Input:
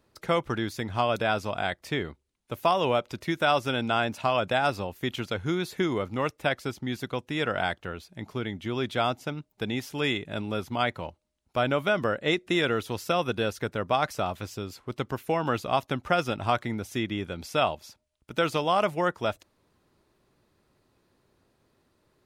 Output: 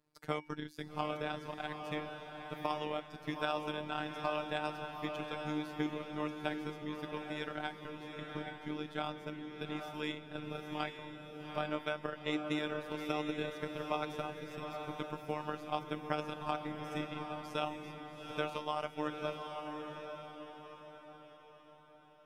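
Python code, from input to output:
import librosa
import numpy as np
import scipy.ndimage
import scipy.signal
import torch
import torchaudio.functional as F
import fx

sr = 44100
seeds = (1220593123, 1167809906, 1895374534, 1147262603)

y = x * np.sin(2.0 * np.pi * 40.0 * np.arange(len(x)) / sr)
y = fx.comb_fb(y, sr, f0_hz=320.0, decay_s=0.47, harmonics='odd', damping=0.0, mix_pct=80)
y = fx.over_compress(y, sr, threshold_db=-37.0, ratio=-1.0)
y = fx.transient(y, sr, attack_db=5, sustain_db=-5)
y = fx.robotise(y, sr, hz=151.0)
y = fx.echo_diffused(y, sr, ms=811, feedback_pct=46, wet_db=-5)
y = F.gain(torch.from_numpy(y), 3.5).numpy()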